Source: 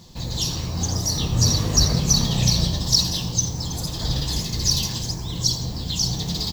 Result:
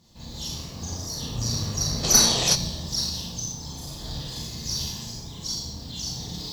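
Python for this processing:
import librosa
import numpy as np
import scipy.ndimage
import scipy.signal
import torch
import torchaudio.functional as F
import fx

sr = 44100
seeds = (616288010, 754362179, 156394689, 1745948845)

y = fx.rev_schroeder(x, sr, rt60_s=0.69, comb_ms=27, drr_db=-5.0)
y = fx.spec_box(y, sr, start_s=2.04, length_s=0.51, low_hz=310.0, high_hz=8700.0, gain_db=11)
y = fx.tube_stage(y, sr, drive_db=-5.0, bias=0.75)
y = F.gain(torch.from_numpy(y), -9.5).numpy()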